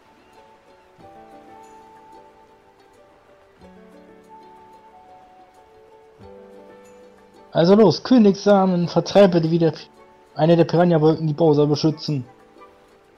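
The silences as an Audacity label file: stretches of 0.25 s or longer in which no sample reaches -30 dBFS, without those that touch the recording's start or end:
9.830000	10.380000	silence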